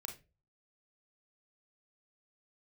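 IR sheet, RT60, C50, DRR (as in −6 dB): 0.30 s, 9.5 dB, 3.0 dB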